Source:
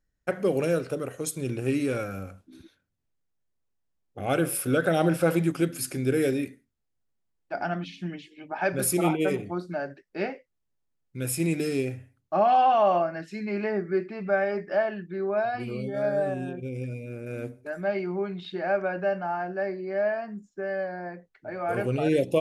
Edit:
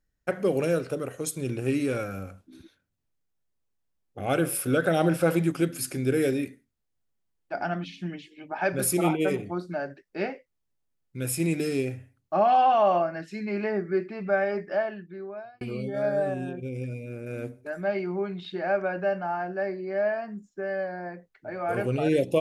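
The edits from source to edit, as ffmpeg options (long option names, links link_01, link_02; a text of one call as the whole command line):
ffmpeg -i in.wav -filter_complex "[0:a]asplit=2[link_01][link_02];[link_01]atrim=end=15.61,asetpts=PTS-STARTPTS,afade=type=out:start_time=14.59:duration=1.02[link_03];[link_02]atrim=start=15.61,asetpts=PTS-STARTPTS,afade=type=in:duration=0.004:curve=hsin[link_04];[link_03][link_04]concat=n=2:v=0:a=1" out.wav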